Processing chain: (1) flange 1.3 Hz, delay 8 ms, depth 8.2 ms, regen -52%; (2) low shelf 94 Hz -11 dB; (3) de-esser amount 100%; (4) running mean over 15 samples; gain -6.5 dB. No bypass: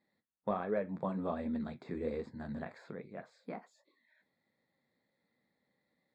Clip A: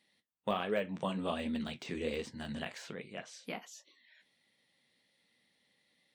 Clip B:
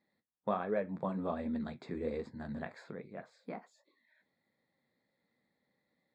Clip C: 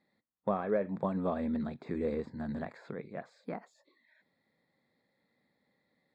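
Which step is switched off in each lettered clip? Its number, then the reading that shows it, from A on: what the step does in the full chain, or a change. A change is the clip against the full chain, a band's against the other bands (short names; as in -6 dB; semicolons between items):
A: 4, 4 kHz band +18.5 dB; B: 3, 4 kHz band +2.5 dB; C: 1, 4 kHz band -2.5 dB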